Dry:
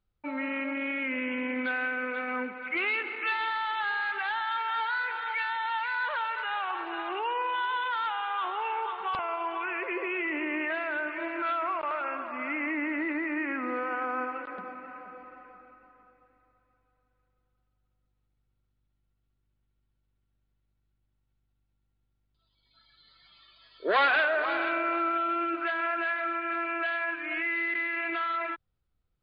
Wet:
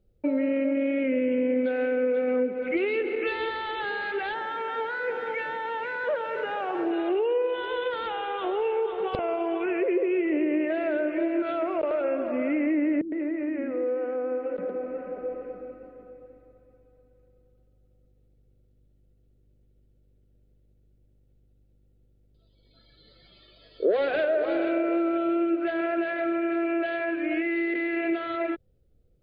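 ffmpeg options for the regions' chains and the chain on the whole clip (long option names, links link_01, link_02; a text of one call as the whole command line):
ffmpeg -i in.wav -filter_complex "[0:a]asettb=1/sr,asplit=3[link_01][link_02][link_03];[link_01]atrim=end=4.344[link_04];[link_02]atrim=start=4.34:end=6.91,asetpts=PTS-STARTPTS,afade=type=in:duration=0.004:curve=qsin,afade=type=out:start_time=2.566:duration=0.004:curve=qsin,aeval=exprs='val(0)+0.5*0.00794*sgn(val(0))':channel_layout=same,highpass=180,lowpass=2200[link_05];[link_03]atrim=start=6.906[link_06];[link_04][link_05]acrossfade=duration=0.004:curve1=hsin:curve2=qsin[link_07];[link_07][link_06]acrossfade=duration=0.004:curve1=qsin:curve2=hsin,asettb=1/sr,asplit=3[link_08][link_09][link_10];[link_08]atrim=end=13.014[link_11];[link_09]atrim=start=13.01:end=15.42,asetpts=PTS-STARTPTS,afade=type=in:duration=0.004:curve=qsin,afade=type=out:start_time=2.406:duration=0.004:curve=qsin,highshelf=frequency=3900:gain=-7.5,acrossover=split=240[link_12][link_13];[link_13]adelay=110[link_14];[link_12][link_14]amix=inputs=2:normalize=0,atrim=end_sample=106281,acompressor=threshold=-43dB:ratio=2.5:attack=3.2:release=140:knee=1:detection=peak[link_15];[link_10]atrim=start=15.416[link_16];[link_11][link_15]acrossfade=duration=0.004:curve1=hsin:curve2=qsin[link_17];[link_17][link_16]acrossfade=duration=0.004:curve1=qsin:curve2=hsin,lowshelf=frequency=720:width_type=q:width=3:gain=12,acompressor=threshold=-26dB:ratio=3,volume=1.5dB" out.wav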